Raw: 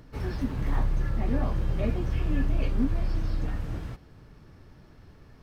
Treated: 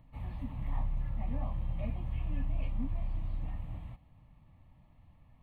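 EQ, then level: high shelf 3200 Hz -8.5 dB; fixed phaser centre 1500 Hz, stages 6; -7.0 dB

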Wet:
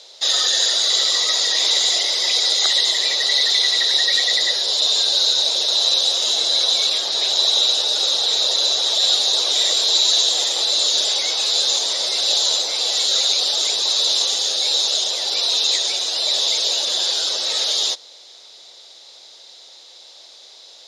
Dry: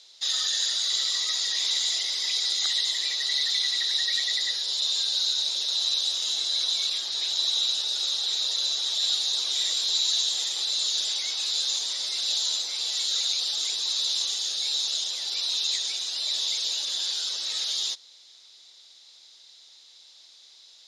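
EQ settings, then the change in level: low shelf 140 Hz +3.5 dB; bell 560 Hz +13.5 dB 1.6 oct; +8.0 dB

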